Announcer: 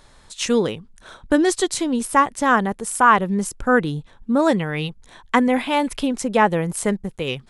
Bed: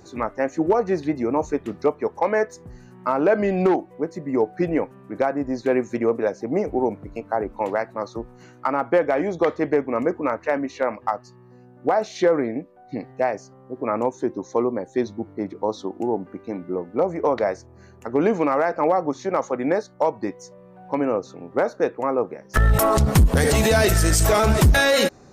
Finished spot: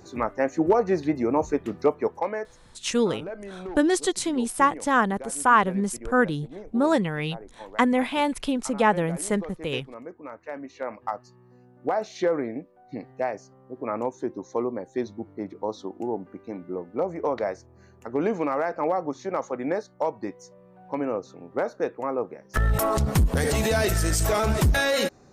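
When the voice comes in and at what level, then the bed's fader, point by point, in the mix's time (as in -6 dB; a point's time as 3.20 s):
2.45 s, -4.0 dB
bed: 2.08 s -1 dB
2.61 s -18 dB
10.14 s -18 dB
11.15 s -5.5 dB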